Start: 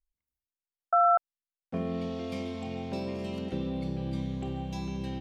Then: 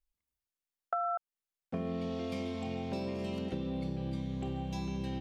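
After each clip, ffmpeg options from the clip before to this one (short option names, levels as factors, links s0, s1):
-af "acompressor=threshold=0.0251:ratio=5"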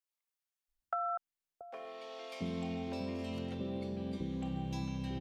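-filter_complex "[0:a]acrossover=split=500[s0][s1];[s0]adelay=680[s2];[s2][s1]amix=inputs=2:normalize=0,volume=0.841"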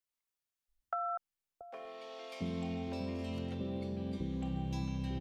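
-af "lowshelf=f=86:g=8.5,volume=0.891"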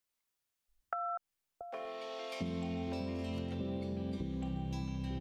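-af "acompressor=threshold=0.0112:ratio=6,volume=1.68"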